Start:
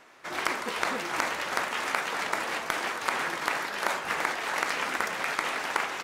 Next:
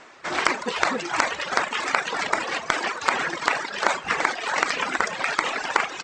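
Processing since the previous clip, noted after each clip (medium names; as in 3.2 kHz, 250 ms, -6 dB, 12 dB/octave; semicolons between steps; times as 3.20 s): Chebyshev low-pass 8 kHz, order 5; reverb removal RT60 1.8 s; trim +8.5 dB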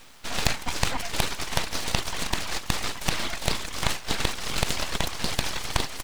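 static phaser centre 380 Hz, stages 4; word length cut 10-bit, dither none; full-wave rectifier; trim +3.5 dB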